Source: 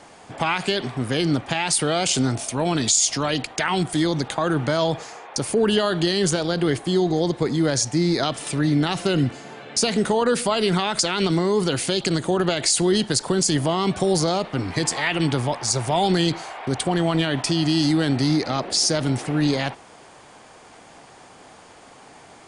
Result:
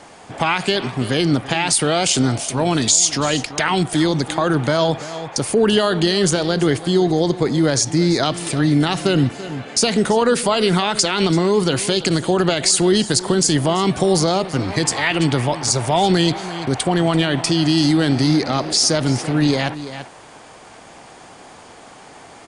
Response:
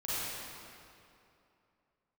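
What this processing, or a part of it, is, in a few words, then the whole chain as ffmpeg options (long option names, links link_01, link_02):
ducked delay: -filter_complex "[0:a]asplit=3[link_01][link_02][link_03];[link_02]adelay=336,volume=-6dB[link_04];[link_03]apad=whole_len=1005973[link_05];[link_04][link_05]sidechaincompress=threshold=-27dB:ratio=8:attack=16:release=750[link_06];[link_01][link_06]amix=inputs=2:normalize=0,volume=4dB"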